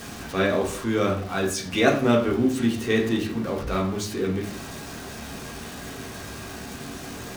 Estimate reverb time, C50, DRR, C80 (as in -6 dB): 0.50 s, 8.0 dB, -1.5 dB, 12.0 dB